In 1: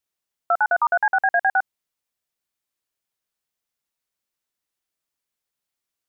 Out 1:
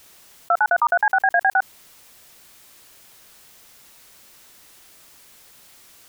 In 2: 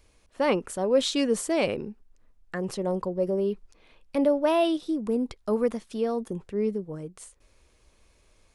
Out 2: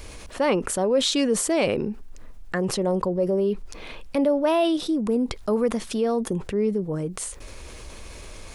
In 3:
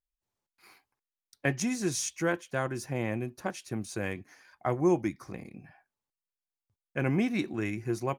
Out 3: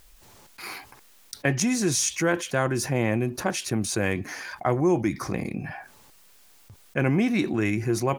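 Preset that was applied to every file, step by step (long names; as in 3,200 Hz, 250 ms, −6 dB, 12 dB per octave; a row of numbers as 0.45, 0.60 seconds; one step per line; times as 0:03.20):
envelope flattener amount 50%
normalise the peak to −9 dBFS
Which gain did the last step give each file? +1.0, −0.5, +2.0 decibels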